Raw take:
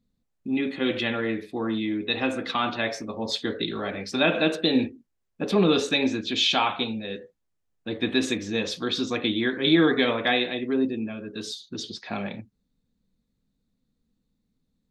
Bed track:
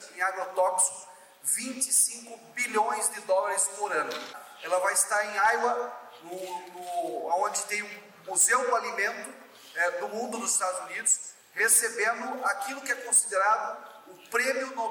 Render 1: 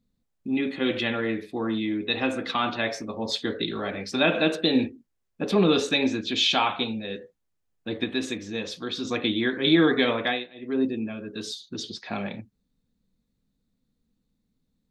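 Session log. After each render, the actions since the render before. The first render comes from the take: 8.04–9.05 gain -4.5 dB; 10.21–10.81 dip -19.5 dB, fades 0.27 s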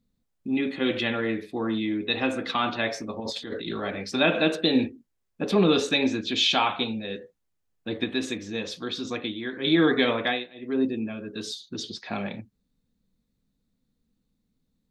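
3.2–3.83 negative-ratio compressor -33 dBFS; 8.9–9.89 dip -9 dB, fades 0.47 s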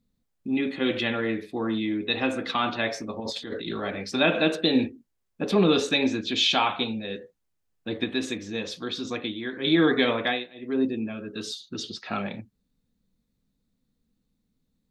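11.14–12.2 small resonant body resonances 1300/2800 Hz, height 10 dB -> 15 dB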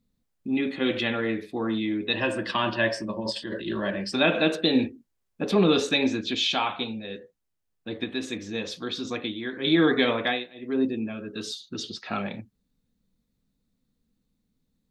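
2.13–4.13 ripple EQ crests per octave 1.3, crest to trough 12 dB; 6.35–8.33 gain -3 dB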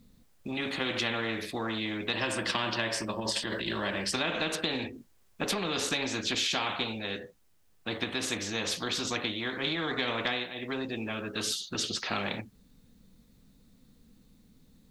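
compressor, threshold -25 dBFS, peak gain reduction 9.5 dB; spectral compressor 2:1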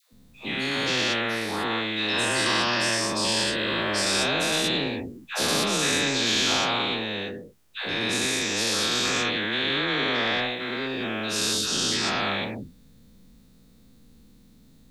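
spectral dilation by 0.24 s; dispersion lows, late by 0.126 s, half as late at 690 Hz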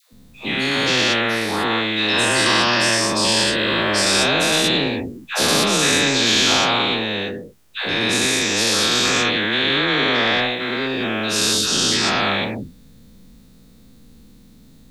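gain +7 dB

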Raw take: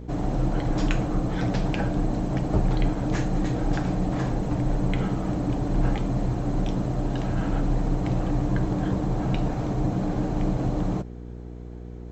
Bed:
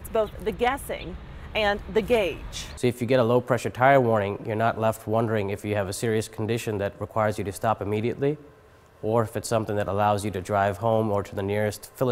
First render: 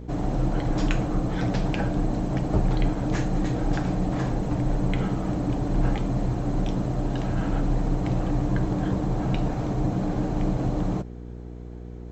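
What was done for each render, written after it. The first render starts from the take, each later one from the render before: nothing audible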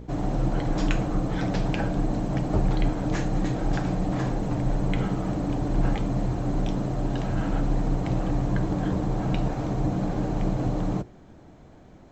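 de-hum 60 Hz, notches 8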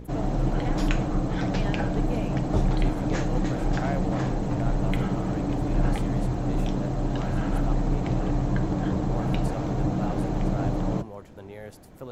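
add bed -16 dB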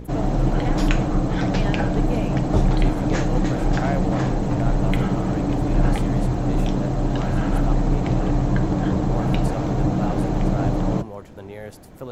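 gain +5 dB

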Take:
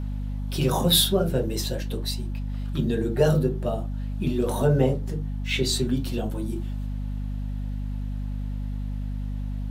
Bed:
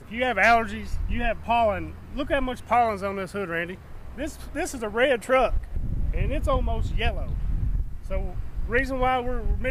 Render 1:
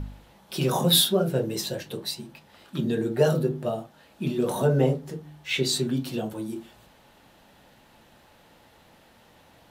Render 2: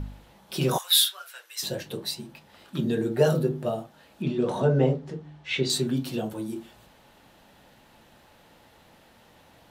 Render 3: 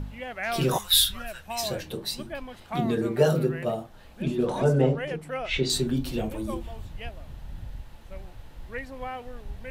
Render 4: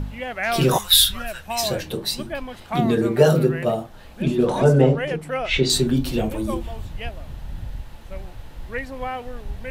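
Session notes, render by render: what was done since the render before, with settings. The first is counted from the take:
de-hum 50 Hz, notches 6
0.78–1.63 HPF 1300 Hz 24 dB/oct; 4.22–5.7 air absorption 100 m
add bed -12.5 dB
gain +6.5 dB; limiter -3 dBFS, peak gain reduction 2.5 dB

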